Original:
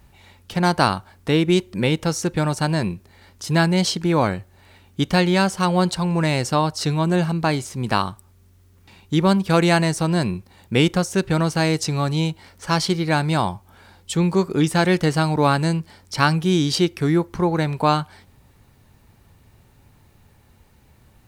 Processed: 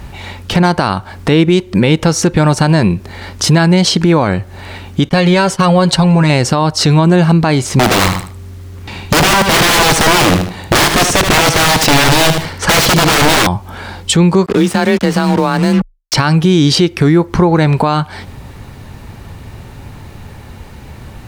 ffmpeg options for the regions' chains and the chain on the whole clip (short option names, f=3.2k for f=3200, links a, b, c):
-filter_complex "[0:a]asettb=1/sr,asplit=3[a][b][c];[a]atrim=end=5.094[d];[b]atrim=start=5.09:end=6.3,asetpts=PTS-STARTPTS,afade=t=in:d=0.004:c=qsin,afade=t=out:st=1.206:d=0.004:c=qsin,agate=range=-33dB:threshold=-26dB:ratio=3:release=100:detection=peak,acompressor=threshold=-22dB:ratio=2:attack=3.2:release=140:knee=1:detection=peak,aecho=1:1:7.3:0.57,atrim=end_sample=53361[e];[c]atrim=start=6.296[f];[d][e]acrossfade=d=0.004:c1=hsin:c2=qsin[g];[g][f]acrossfade=d=0.004:c1=qsin:c2=hsin,asettb=1/sr,asplit=3[h][i][j];[h]atrim=end=7.794[k];[i]atrim=start=7.79:end=13.47,asetpts=PTS-STARTPTS,afade=t=in:d=0.004:c=qsin,afade=t=out:st=5.676:d=0.004:c=qsin,aeval=exprs='(mod(10.6*val(0)+1,2)-1)/10.6':c=same,aecho=1:1:76|152|228:0.398|0.104|0.0269,atrim=end_sample=250488[l];[j]atrim=start=13.466[m];[k][l]acrossfade=d=0.004:c1=hsin:c2=qsin[n];[n][m]acrossfade=d=0.004:c1=qsin:c2=hsin,asettb=1/sr,asplit=3[o][p][q];[o]atrim=end=14.464[r];[p]atrim=start=14.46:end=16.14,asetpts=PTS-STARTPTS,afade=t=in:d=0.004:c=qsin,afade=t=out:st=1.676:d=0.004:c=qsin,acrusher=bits=4:mix=0:aa=0.5,afreqshift=27[s];[q]atrim=start=16.136[t];[r][s]acrossfade=d=0.004:c1=hsin:c2=qsin[u];[u][t]acrossfade=d=0.004:c1=qsin:c2=hsin,highshelf=f=7.9k:g=-10.5,acompressor=threshold=-29dB:ratio=4,alimiter=level_in=23dB:limit=-1dB:release=50:level=0:latency=1,volume=-1dB"